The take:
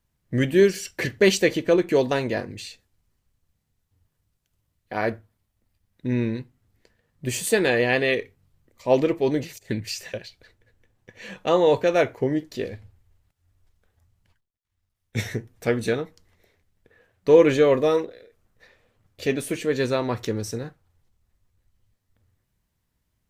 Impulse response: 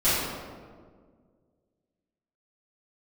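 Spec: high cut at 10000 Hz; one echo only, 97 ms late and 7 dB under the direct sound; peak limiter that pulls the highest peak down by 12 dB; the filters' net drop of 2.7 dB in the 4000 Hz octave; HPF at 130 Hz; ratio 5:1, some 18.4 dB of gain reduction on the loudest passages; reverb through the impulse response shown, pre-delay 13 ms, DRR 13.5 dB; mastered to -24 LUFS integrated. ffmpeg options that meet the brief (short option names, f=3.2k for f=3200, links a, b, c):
-filter_complex "[0:a]highpass=130,lowpass=10k,equalizer=f=4k:t=o:g=-3.5,acompressor=threshold=-31dB:ratio=5,alimiter=level_in=5.5dB:limit=-24dB:level=0:latency=1,volume=-5.5dB,aecho=1:1:97:0.447,asplit=2[a][b];[1:a]atrim=start_sample=2205,adelay=13[c];[b][c]afir=irnorm=-1:irlink=0,volume=-29.5dB[d];[a][d]amix=inputs=2:normalize=0,volume=15.5dB"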